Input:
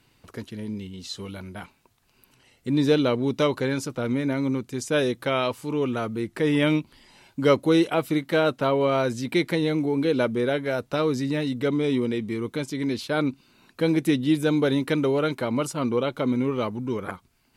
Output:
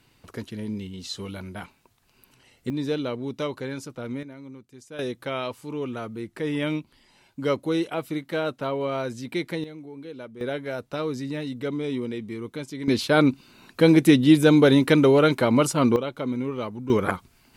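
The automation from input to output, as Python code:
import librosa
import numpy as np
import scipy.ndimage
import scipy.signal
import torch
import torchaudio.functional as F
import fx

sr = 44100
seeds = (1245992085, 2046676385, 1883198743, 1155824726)

y = fx.gain(x, sr, db=fx.steps((0.0, 1.0), (2.7, -7.0), (4.23, -17.0), (4.99, -5.5), (9.64, -16.5), (10.41, -5.0), (12.88, 6.0), (15.96, -4.0), (16.9, 8.0)))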